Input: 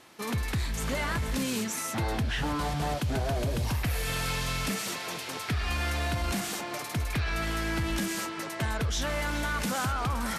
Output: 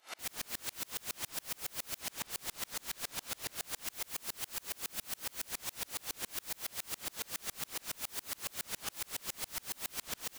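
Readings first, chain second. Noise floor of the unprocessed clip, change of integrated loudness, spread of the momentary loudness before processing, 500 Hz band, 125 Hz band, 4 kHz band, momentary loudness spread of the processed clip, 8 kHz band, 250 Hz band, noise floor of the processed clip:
−38 dBFS, −9.0 dB, 3 LU, −18.0 dB, −28.5 dB, −7.0 dB, 1 LU, −3.5 dB, −23.0 dB, −65 dBFS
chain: brickwall limiter −31 dBFS, peak gain reduction 9 dB
high-pass filter 340 Hz 12 dB per octave
upward compression, threshold −56 dBFS
mid-hump overdrive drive 8 dB, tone 7,300 Hz, clips at −28 dBFS
high-shelf EQ 5,300 Hz +2.5 dB
comb filter 1.4 ms, depth 38%
ambience of single reflections 29 ms −16 dB, 72 ms −5 dB
wrap-around overflow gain 40.5 dB
tremolo with a ramp in dB swelling 7.2 Hz, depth 36 dB
level +12 dB

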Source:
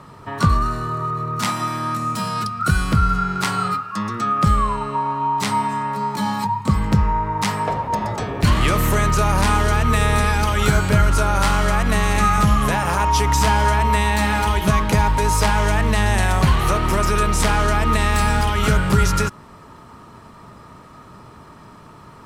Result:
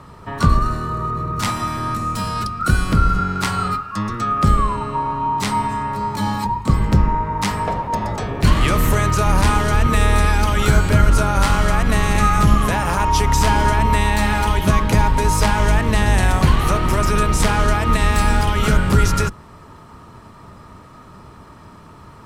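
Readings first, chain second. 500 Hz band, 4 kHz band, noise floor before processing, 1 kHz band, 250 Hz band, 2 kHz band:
+0.5 dB, 0.0 dB, −43 dBFS, 0.0 dB, +1.0 dB, 0.0 dB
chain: sub-octave generator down 1 octave, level −1 dB

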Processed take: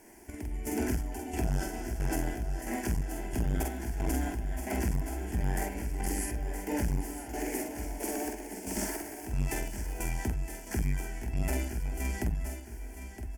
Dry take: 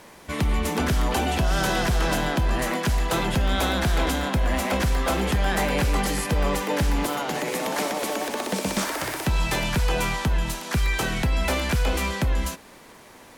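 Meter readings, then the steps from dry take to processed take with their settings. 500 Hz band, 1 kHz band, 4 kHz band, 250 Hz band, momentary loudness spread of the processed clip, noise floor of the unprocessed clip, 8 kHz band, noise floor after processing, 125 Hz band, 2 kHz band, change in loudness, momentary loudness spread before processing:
−11.5 dB, −14.0 dB, −19.5 dB, −8.0 dB, 6 LU, −48 dBFS, −7.5 dB, −44 dBFS, −8.5 dB, −14.5 dB, −10.0 dB, 4 LU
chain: flat-topped bell 1,600 Hz −8 dB 2.4 octaves
phaser with its sweep stopped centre 790 Hz, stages 8
square-wave tremolo 1.5 Hz, depth 65%, duty 45%
double-tracking delay 47 ms −3 dB
on a send: repeating echo 966 ms, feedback 41%, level −11.5 dB
on the sum: saturating transformer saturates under 150 Hz
level −3 dB

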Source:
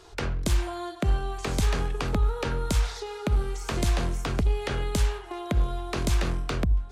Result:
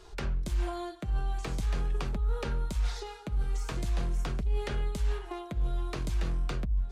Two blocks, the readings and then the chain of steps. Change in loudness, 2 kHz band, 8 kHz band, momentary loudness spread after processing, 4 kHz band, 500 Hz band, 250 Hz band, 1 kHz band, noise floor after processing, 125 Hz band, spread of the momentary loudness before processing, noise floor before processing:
−5.5 dB, −8.5 dB, −10.5 dB, 3 LU, −9.0 dB, −7.5 dB, −8.0 dB, −7.5 dB, −46 dBFS, −5.5 dB, 4 LU, −42 dBFS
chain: low-shelf EQ 110 Hz +9 dB
reversed playback
downward compressor, threshold −23 dBFS, peak gain reduction 11.5 dB
reversed playback
flanger 0.42 Hz, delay 4.8 ms, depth 1.8 ms, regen −42%

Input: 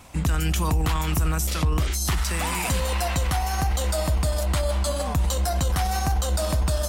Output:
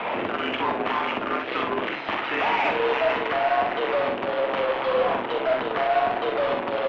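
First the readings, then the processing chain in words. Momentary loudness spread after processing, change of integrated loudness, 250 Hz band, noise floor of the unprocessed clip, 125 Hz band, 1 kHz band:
4 LU, 0.0 dB, −1.5 dB, −26 dBFS, −22.5 dB, +5.5 dB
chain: in parallel at −7 dB: fuzz pedal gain 50 dB, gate −58 dBFS
on the sum: single-sideband voice off tune −57 Hz 360–3,200 Hz
soft clipping −15.5 dBFS, distortion −18 dB
on a send: ambience of single reflections 45 ms −6 dB, 65 ms −6.5 dB
on the sum: harmonic generator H 6 −35 dB, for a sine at −10.5 dBFS
high-frequency loss of the air 200 metres

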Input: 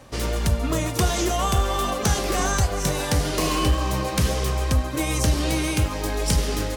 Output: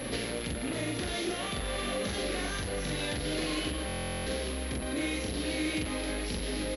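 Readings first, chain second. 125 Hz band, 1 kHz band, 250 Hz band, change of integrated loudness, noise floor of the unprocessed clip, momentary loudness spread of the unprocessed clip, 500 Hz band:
−15.0 dB, −14.0 dB, −7.0 dB, −10.0 dB, −29 dBFS, 3 LU, −7.5 dB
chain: speech leveller 0.5 s
gain into a clipping stage and back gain 25.5 dB
double-tracking delay 42 ms −2 dB
brickwall limiter −32.5 dBFS, peak gain reduction 12 dB
graphic EQ with 10 bands 250 Hz +8 dB, 500 Hz +7 dB, 1,000 Hz −5 dB, 2,000 Hz +8 dB, 4,000 Hz +10 dB
buffer that repeats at 0:03.87, samples 1,024, times 16
switching amplifier with a slow clock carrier 11,000 Hz

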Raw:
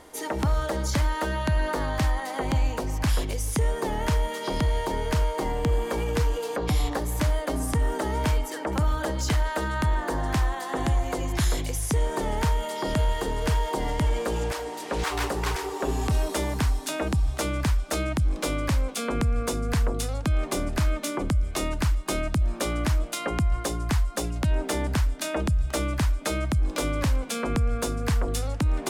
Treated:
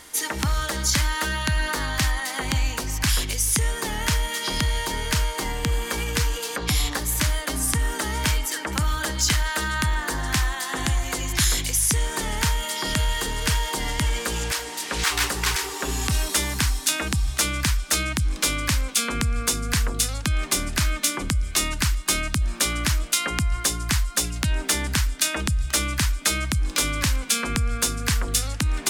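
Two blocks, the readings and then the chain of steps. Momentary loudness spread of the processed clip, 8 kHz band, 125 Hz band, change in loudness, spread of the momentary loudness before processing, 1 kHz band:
4 LU, +12.0 dB, 0.0 dB, +3.5 dB, 2 LU, +0.5 dB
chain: drawn EQ curve 210 Hz 0 dB, 370 Hz −4 dB, 630 Hz −6 dB, 1,600 Hz +7 dB, 5,900 Hz +12 dB

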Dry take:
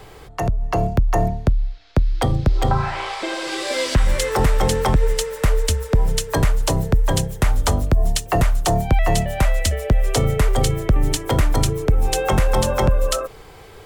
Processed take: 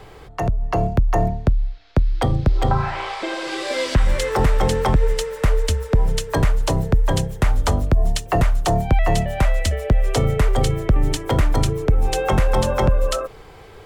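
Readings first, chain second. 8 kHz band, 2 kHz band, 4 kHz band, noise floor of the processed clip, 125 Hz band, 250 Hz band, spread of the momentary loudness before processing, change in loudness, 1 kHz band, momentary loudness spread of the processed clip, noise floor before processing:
−5.0 dB, −1.0 dB, −2.5 dB, −42 dBFS, 0.0 dB, 0.0 dB, 5 LU, −0.5 dB, 0.0 dB, 5 LU, −42 dBFS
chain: high-shelf EQ 5,600 Hz −8 dB

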